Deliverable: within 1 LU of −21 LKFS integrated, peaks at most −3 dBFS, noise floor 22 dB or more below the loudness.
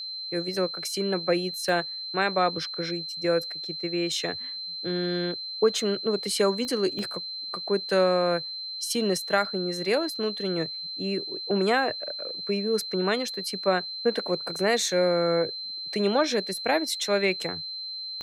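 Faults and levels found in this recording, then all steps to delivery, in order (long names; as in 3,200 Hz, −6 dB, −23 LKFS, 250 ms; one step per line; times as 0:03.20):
number of clicks 4; interfering tone 4,100 Hz; level of the tone −33 dBFS; integrated loudness −27.0 LKFS; sample peak −9.5 dBFS; target loudness −21.0 LKFS
→ click removal
notch filter 4,100 Hz, Q 30
level +6 dB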